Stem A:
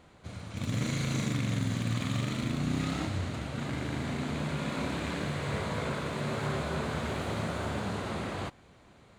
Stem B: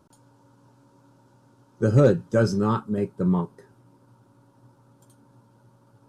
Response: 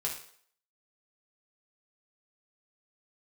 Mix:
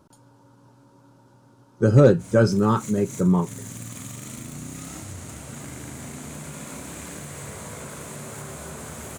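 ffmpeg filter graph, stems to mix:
-filter_complex "[0:a]aexciter=amount=7.8:drive=5.6:freq=5900,acompressor=threshold=-31dB:ratio=6,adelay=1950,volume=-2dB[link_01];[1:a]volume=3dB,asplit=2[link_02][link_03];[link_03]apad=whole_len=491177[link_04];[link_01][link_04]sidechaincompress=threshold=-28dB:ratio=8:attack=20:release=112[link_05];[link_05][link_02]amix=inputs=2:normalize=0"

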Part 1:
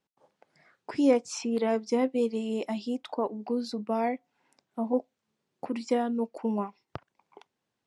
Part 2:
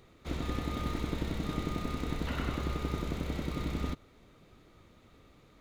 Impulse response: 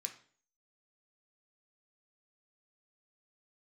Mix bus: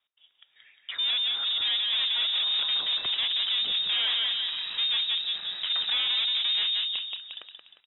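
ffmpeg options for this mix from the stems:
-filter_complex "[0:a]highpass=77,volume=2.5dB,asplit=3[link_01][link_02][link_03];[link_02]volume=-7dB[link_04];[link_03]volume=-4.5dB[link_05];[1:a]alimiter=level_in=4dB:limit=-24dB:level=0:latency=1:release=13,volume=-4dB,acrossover=split=1000[link_06][link_07];[link_06]aeval=exprs='val(0)*(1-0.5/2+0.5/2*cos(2*PI*1.7*n/s))':channel_layout=same[link_08];[link_07]aeval=exprs='val(0)*(1-0.5/2-0.5/2*cos(2*PI*1.7*n/s))':channel_layout=same[link_09];[link_08][link_09]amix=inputs=2:normalize=0,adelay=2200,volume=-6.5dB,asplit=2[link_10][link_11];[link_11]volume=-7dB[link_12];[2:a]atrim=start_sample=2205[link_13];[link_04][link_12]amix=inputs=2:normalize=0[link_14];[link_14][link_13]afir=irnorm=-1:irlink=0[link_15];[link_05]aecho=0:1:177|354|531|708|885|1062:1|0.44|0.194|0.0852|0.0375|0.0165[link_16];[link_01][link_10][link_15][link_16]amix=inputs=4:normalize=0,dynaudnorm=framelen=320:gausssize=11:maxgain=11.5dB,asoftclip=type=tanh:threshold=-25dB,lowpass=frequency=3300:width_type=q:width=0.5098,lowpass=frequency=3300:width_type=q:width=0.6013,lowpass=frequency=3300:width_type=q:width=0.9,lowpass=frequency=3300:width_type=q:width=2.563,afreqshift=-3900"

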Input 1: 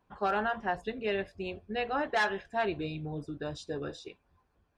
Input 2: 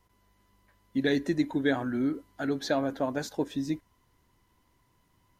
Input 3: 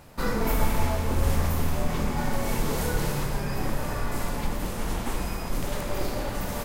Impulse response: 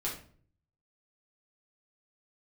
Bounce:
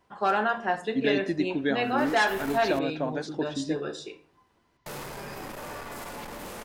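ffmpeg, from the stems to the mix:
-filter_complex "[0:a]highpass=180,equalizer=frequency=8300:width_type=o:width=1:gain=6,volume=2dB,asplit=3[link_01][link_02][link_03];[link_02]volume=-7dB[link_04];[1:a]lowpass=frequency=5600:width=0.5412,lowpass=frequency=5600:width=1.3066,volume=-0.5dB[link_05];[2:a]bass=frequency=250:gain=-9,treble=frequency=4000:gain=-2,acontrast=48,asoftclip=type=tanh:threshold=-26.5dB,adelay=1800,volume=-6.5dB,asplit=3[link_06][link_07][link_08];[link_06]atrim=end=2.79,asetpts=PTS-STARTPTS,afade=type=out:start_time=2.786:duration=0.004:curve=hsin[link_09];[link_07]atrim=start=2.79:end=4.86,asetpts=PTS-STARTPTS,volume=0[link_10];[link_08]atrim=start=4.86,asetpts=PTS-STARTPTS,afade=type=in:duration=0.004:curve=hsin[link_11];[link_09][link_10][link_11]concat=n=3:v=0:a=1[link_12];[link_03]apad=whole_len=372398[link_13];[link_12][link_13]sidechaincompress=threshold=-33dB:ratio=8:attack=37:release=103[link_14];[3:a]atrim=start_sample=2205[link_15];[link_04][link_15]afir=irnorm=-1:irlink=0[link_16];[link_01][link_05][link_14][link_16]amix=inputs=4:normalize=0,lowshelf=frequency=66:gain=-10.5"

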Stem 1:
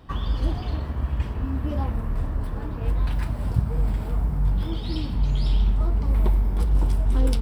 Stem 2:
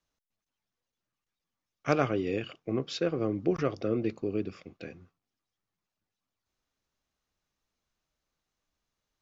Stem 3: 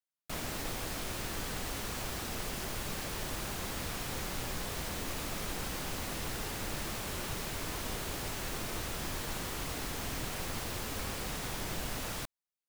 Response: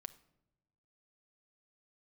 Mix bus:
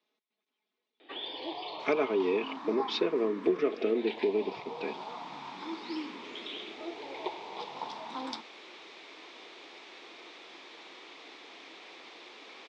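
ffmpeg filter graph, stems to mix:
-filter_complex "[0:a]equalizer=frequency=940:width=2.3:gain=7,asplit=2[link_01][link_02];[link_02]afreqshift=0.35[link_03];[link_01][link_03]amix=inputs=2:normalize=1,adelay=1000,volume=-1.5dB[link_04];[1:a]equalizer=frequency=180:width_type=o:width=2.6:gain=11.5,aecho=1:1:4.7:0.69,volume=0.5dB,asplit=3[link_05][link_06][link_07];[link_06]volume=-14.5dB[link_08];[2:a]adelay=1500,volume=-10.5dB,asplit=2[link_09][link_10];[link_10]volume=-10dB[link_11];[link_07]apad=whole_len=625452[link_12];[link_09][link_12]sidechaincompress=threshold=-27dB:ratio=8:attack=16:release=908[link_13];[link_05][link_13]amix=inputs=2:normalize=0,aemphasis=mode=reproduction:type=cd,acompressor=threshold=-23dB:ratio=6,volume=0dB[link_14];[3:a]atrim=start_sample=2205[link_15];[link_08][link_11]amix=inputs=2:normalize=0[link_16];[link_16][link_15]afir=irnorm=-1:irlink=0[link_17];[link_04][link_14][link_17]amix=inputs=3:normalize=0,highpass=frequency=330:width=0.5412,highpass=frequency=330:width=1.3066,equalizer=frequency=330:width_type=q:width=4:gain=3,equalizer=frequency=580:width_type=q:width=4:gain=-4,equalizer=frequency=1500:width_type=q:width=4:gain=-5,equalizer=frequency=2300:width_type=q:width=4:gain=7,equalizer=frequency=3600:width_type=q:width=4:gain=8,lowpass=frequency=5500:width=0.5412,lowpass=frequency=5500:width=1.3066"

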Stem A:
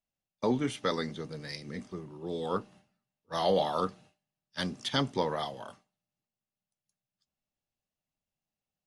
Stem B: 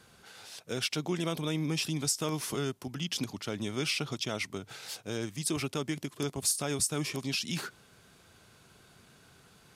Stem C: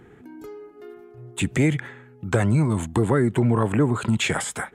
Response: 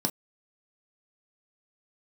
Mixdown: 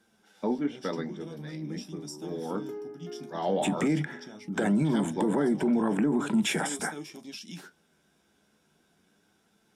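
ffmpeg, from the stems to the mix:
-filter_complex "[0:a]lowpass=2700,volume=-6dB,asplit=3[link_01][link_02][link_03];[link_02]volume=-11dB[link_04];[1:a]flanger=delay=8.9:depth=5.6:regen=46:speed=0.42:shape=sinusoidal,volume=-8dB,asplit=2[link_05][link_06];[link_06]volume=-12dB[link_07];[2:a]highpass=150,adelay=2250,volume=-7.5dB,asplit=2[link_08][link_09];[link_09]volume=-8.5dB[link_10];[link_03]apad=whole_len=430265[link_11];[link_05][link_11]sidechaincompress=threshold=-50dB:ratio=8:attack=16:release=936[link_12];[3:a]atrim=start_sample=2205[link_13];[link_04][link_07][link_10]amix=inputs=3:normalize=0[link_14];[link_14][link_13]afir=irnorm=-1:irlink=0[link_15];[link_01][link_12][link_08][link_15]amix=inputs=4:normalize=0,alimiter=limit=-18dB:level=0:latency=1:release=25"

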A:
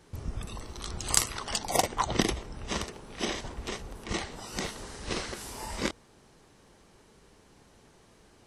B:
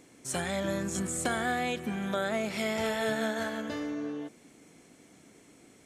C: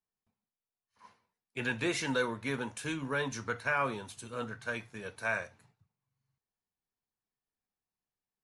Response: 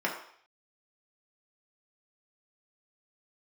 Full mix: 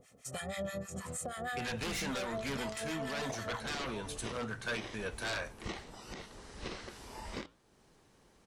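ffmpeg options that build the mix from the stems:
-filter_complex "[0:a]acrossover=split=5400[link_01][link_02];[link_02]acompressor=threshold=-53dB:ratio=4:attack=1:release=60[link_03];[link_01][link_03]amix=inputs=2:normalize=0,alimiter=limit=-15.5dB:level=0:latency=1:release=415,flanger=delay=3.3:depth=5.9:regen=-85:speed=1.6:shape=triangular,adelay=1550,volume=-2dB[link_04];[1:a]acrossover=split=920[link_05][link_06];[link_05]aeval=exprs='val(0)*(1-1/2+1/2*cos(2*PI*6.3*n/s))':channel_layout=same[link_07];[link_06]aeval=exprs='val(0)*(1-1/2-1/2*cos(2*PI*6.3*n/s))':channel_layout=same[link_08];[link_07][link_08]amix=inputs=2:normalize=0,aecho=1:1:1.6:0.83,volume=-1.5dB[link_09];[2:a]aeval=exprs='0.112*sin(PI/2*3.98*val(0)/0.112)':channel_layout=same,volume=-9dB[link_10];[link_04][link_09][link_10]amix=inputs=3:normalize=0,alimiter=level_in=5dB:limit=-24dB:level=0:latency=1:release=453,volume=-5dB"

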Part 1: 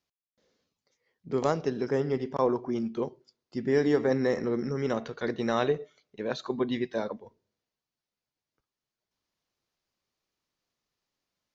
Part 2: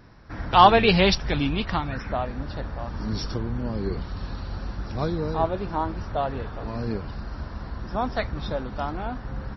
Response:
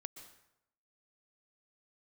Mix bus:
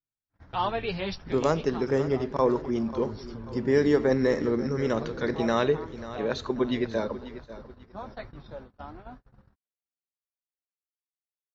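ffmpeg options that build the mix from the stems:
-filter_complex "[0:a]bandreject=frequency=740:width=12,volume=2.5dB,asplit=2[link_01][link_02];[link_02]volume=-14.5dB[link_03];[1:a]highshelf=frequency=3200:gain=-4,flanger=delay=6.9:depth=4:regen=-26:speed=1.2:shape=sinusoidal,volume=-9dB[link_04];[link_03]aecho=0:1:539|1078|1617|2156|2695|3234:1|0.41|0.168|0.0689|0.0283|0.0116[link_05];[link_01][link_04][link_05]amix=inputs=3:normalize=0,agate=range=-39dB:threshold=-43dB:ratio=16:detection=peak"

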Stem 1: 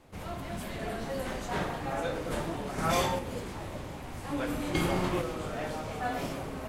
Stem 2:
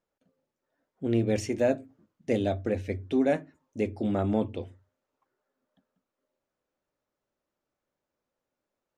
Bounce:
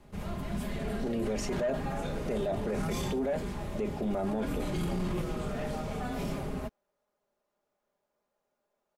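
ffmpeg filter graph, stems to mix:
ffmpeg -i stem1.wav -i stem2.wav -filter_complex "[0:a]acrossover=split=380|3000[link_01][link_02][link_03];[link_02]acompressor=threshold=-34dB:ratio=6[link_04];[link_01][link_04][link_03]amix=inputs=3:normalize=0,lowshelf=frequency=280:gain=9,volume=-3dB[link_05];[1:a]equalizer=frequency=730:width_type=o:width=1.6:gain=7,bandreject=frequency=50:width_type=h:width=6,bandreject=frequency=100:width_type=h:width=6,bandreject=frequency=150:width_type=h:width=6,bandreject=frequency=200:width_type=h:width=6,bandreject=frequency=250:width_type=h:width=6,bandreject=frequency=300:width_type=h:width=6,bandreject=frequency=350:width_type=h:width=6,volume=-1dB[link_06];[link_05][link_06]amix=inputs=2:normalize=0,aecho=1:1:4.9:0.51,asoftclip=type=tanh:threshold=-13.5dB,alimiter=level_in=1dB:limit=-24dB:level=0:latency=1:release=11,volume=-1dB" out.wav

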